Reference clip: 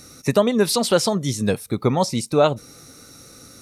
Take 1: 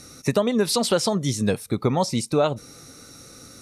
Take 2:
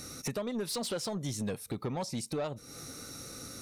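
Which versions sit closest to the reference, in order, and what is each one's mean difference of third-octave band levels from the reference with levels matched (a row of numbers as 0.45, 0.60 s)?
1, 2; 2.0, 7.5 dB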